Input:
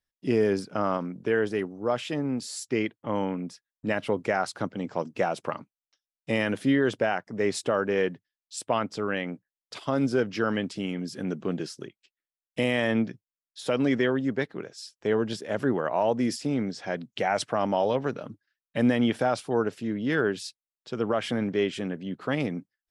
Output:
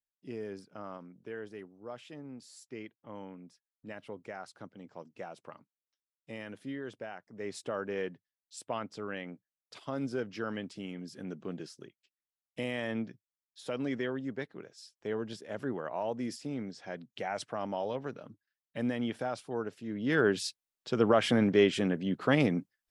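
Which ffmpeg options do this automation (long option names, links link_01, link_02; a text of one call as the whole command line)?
ffmpeg -i in.wav -af "volume=2dB,afade=type=in:start_time=7.22:duration=0.55:silence=0.446684,afade=type=in:start_time=19.85:duration=0.61:silence=0.251189" out.wav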